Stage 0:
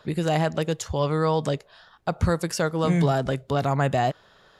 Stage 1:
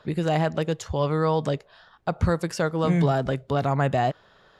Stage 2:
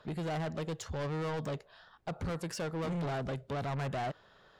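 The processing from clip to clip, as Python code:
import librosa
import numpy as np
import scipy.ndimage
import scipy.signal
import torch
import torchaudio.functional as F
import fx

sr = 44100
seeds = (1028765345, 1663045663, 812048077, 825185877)

y1 = fx.high_shelf(x, sr, hz=5800.0, db=-9.5)
y2 = 10.0 ** (-27.5 / 20.0) * np.tanh(y1 / 10.0 ** (-27.5 / 20.0))
y2 = y2 * 10.0 ** (-5.0 / 20.0)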